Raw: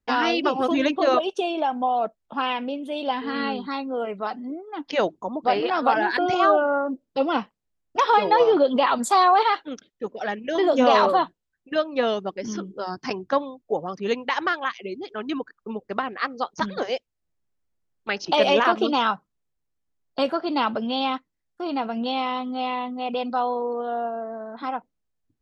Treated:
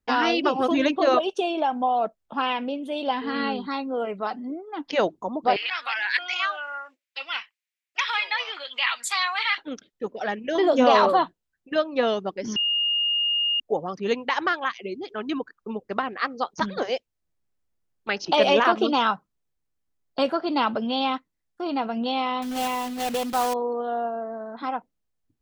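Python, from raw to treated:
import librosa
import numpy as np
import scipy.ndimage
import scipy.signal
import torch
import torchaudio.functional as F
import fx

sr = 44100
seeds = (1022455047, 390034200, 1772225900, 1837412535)

y = fx.highpass_res(x, sr, hz=2200.0, q=3.0, at=(5.56, 9.58))
y = fx.block_float(y, sr, bits=3, at=(22.42, 23.55))
y = fx.edit(y, sr, fx.bleep(start_s=12.56, length_s=1.04, hz=2840.0, db=-20.5), tone=tone)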